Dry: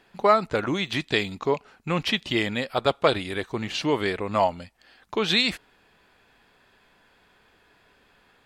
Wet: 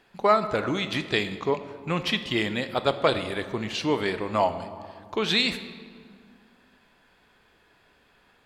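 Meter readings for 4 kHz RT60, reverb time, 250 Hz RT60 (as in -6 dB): 1.3 s, 2.0 s, 2.6 s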